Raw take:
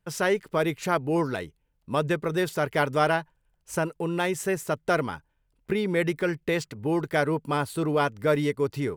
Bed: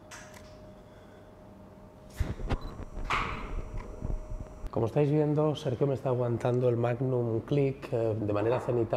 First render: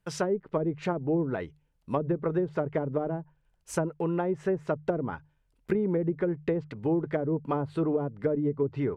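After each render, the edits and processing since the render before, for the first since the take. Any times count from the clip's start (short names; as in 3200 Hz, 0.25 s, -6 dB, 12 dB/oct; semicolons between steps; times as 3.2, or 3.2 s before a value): notches 50/100/150 Hz; treble ducked by the level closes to 380 Hz, closed at -20.5 dBFS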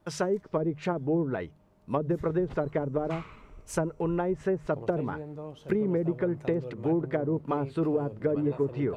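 add bed -13.5 dB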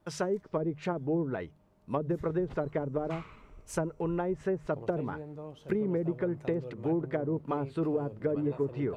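gain -3 dB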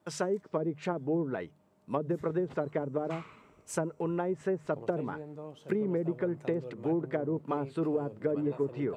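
HPF 140 Hz 12 dB/oct; bell 7800 Hz +5 dB 0.31 oct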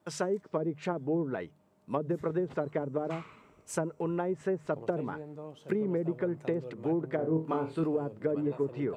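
7.16–7.84 flutter echo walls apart 4.3 m, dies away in 0.28 s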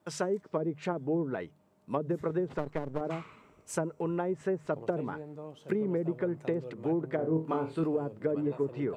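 2.58–3.01 half-wave gain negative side -12 dB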